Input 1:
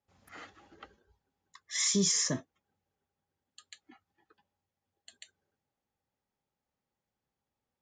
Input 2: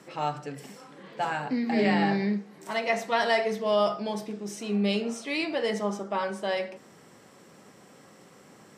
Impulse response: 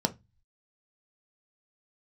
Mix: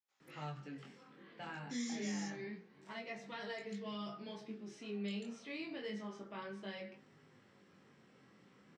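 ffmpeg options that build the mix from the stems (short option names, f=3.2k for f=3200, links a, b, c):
-filter_complex "[0:a]highpass=710,volume=-4dB[a];[1:a]lowpass=3.6k,flanger=delay=7.3:depth=8.4:regen=-41:speed=0.43:shape=sinusoidal,adelay=200,volume=-1.5dB[b];[a][b]amix=inputs=2:normalize=0,equalizer=f=690:w=0.87:g=-8,acrossover=split=410|1200|4600[c][d][e][f];[c]acompressor=threshold=-40dB:ratio=4[g];[d]acompressor=threshold=-50dB:ratio=4[h];[e]acompressor=threshold=-47dB:ratio=4[i];[f]acompressor=threshold=-54dB:ratio=4[j];[g][h][i][j]amix=inputs=4:normalize=0,flanger=delay=19.5:depth=5.3:speed=0.28"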